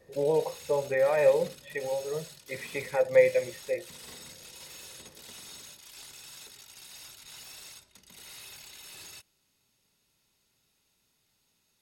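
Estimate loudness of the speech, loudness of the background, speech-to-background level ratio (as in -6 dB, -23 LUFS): -28.0 LUFS, -45.5 LUFS, 17.5 dB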